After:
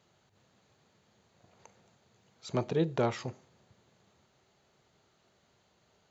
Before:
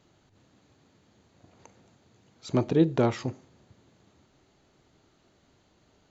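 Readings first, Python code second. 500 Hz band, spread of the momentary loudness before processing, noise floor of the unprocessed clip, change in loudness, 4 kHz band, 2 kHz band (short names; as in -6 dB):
-4.5 dB, 13 LU, -66 dBFS, -6.5 dB, -2.5 dB, -2.5 dB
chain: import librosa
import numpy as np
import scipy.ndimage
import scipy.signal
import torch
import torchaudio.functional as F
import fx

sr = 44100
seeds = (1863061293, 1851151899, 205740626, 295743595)

y = fx.highpass(x, sr, hz=140.0, slope=6)
y = fx.peak_eq(y, sr, hz=290.0, db=-12.0, octaves=0.41)
y = y * librosa.db_to_amplitude(-2.5)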